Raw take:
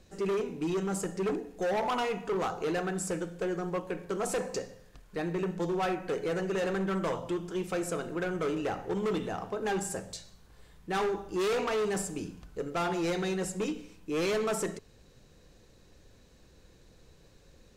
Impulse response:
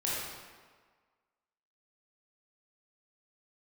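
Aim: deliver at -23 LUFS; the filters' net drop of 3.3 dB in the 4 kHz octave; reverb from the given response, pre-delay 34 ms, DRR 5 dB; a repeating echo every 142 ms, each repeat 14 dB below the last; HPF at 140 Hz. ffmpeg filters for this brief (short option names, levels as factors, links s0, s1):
-filter_complex "[0:a]highpass=140,equalizer=f=4000:t=o:g=-4.5,aecho=1:1:142|284:0.2|0.0399,asplit=2[s0][s1];[1:a]atrim=start_sample=2205,adelay=34[s2];[s1][s2]afir=irnorm=-1:irlink=0,volume=0.266[s3];[s0][s3]amix=inputs=2:normalize=0,volume=2.66"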